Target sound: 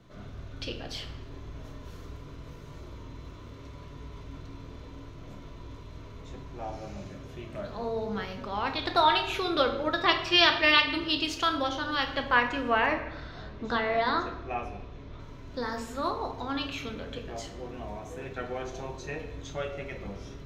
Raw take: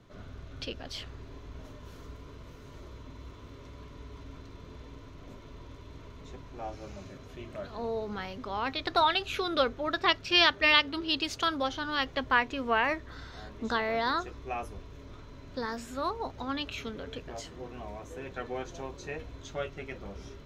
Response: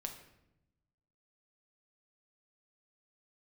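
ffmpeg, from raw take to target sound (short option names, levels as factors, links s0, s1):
-filter_complex "[0:a]asettb=1/sr,asplit=3[s0][s1][s2];[s0]atrim=end=12.864[s3];[s1]atrim=start=12.86:end=15.2,asetpts=PTS-STARTPTS,afade=t=in:d=0.004:c=qsin,afade=t=out:st=2.336:d=0.004:c=qsin,lowpass=4500[s4];[s2]atrim=start=15.196[s5];[s3][s4]acrossfade=d=0.004:c1=hsin:c2=qsin[s6];[s6][s5]acrossfade=d=0.004:c1=qsin:c2=hsin[s7];[1:a]atrim=start_sample=2205[s8];[s7][s8]afir=irnorm=-1:irlink=0,volume=1.58"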